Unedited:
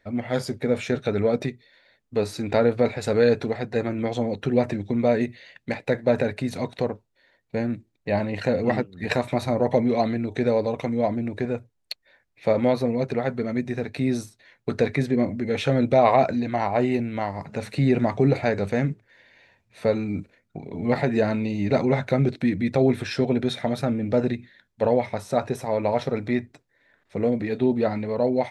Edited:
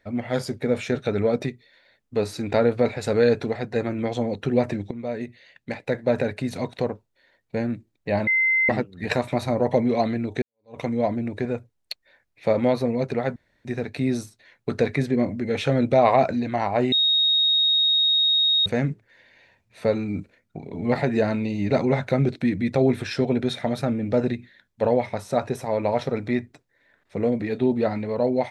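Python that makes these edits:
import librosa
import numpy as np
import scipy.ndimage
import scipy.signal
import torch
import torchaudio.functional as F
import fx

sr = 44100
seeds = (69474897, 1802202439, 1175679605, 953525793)

y = fx.edit(x, sr, fx.fade_in_from(start_s=4.91, length_s=1.88, curve='qsin', floor_db=-13.0),
    fx.bleep(start_s=8.27, length_s=0.42, hz=2070.0, db=-17.0),
    fx.fade_in_span(start_s=10.42, length_s=0.36, curve='exp'),
    fx.room_tone_fill(start_s=13.36, length_s=0.29),
    fx.bleep(start_s=16.92, length_s=1.74, hz=3750.0, db=-16.5), tone=tone)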